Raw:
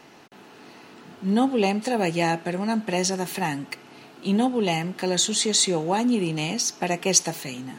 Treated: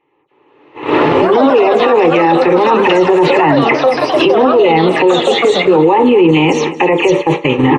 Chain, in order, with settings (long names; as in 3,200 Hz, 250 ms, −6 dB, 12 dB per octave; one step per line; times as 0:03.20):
every frequency bin delayed by itself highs early, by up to 104 ms
camcorder AGC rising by 22 dB per second
hum removal 114.8 Hz, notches 5
noise gate −26 dBFS, range −38 dB
low-shelf EQ 110 Hz −11.5 dB
reversed playback
downward compressor 6 to 1, threshold −26 dBFS, peak gain reduction 13.5 dB
reversed playback
phaser with its sweep stopped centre 1,000 Hz, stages 8
delay with pitch and tempo change per echo 285 ms, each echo +6 semitones, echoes 3, each echo −6 dB
head-to-tape spacing loss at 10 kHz 38 dB
repeating echo 223 ms, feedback 35%, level −19 dB
on a send at −10.5 dB: convolution reverb RT60 0.30 s, pre-delay 3 ms
on the sum: boost into a limiter +33 dB
level −1 dB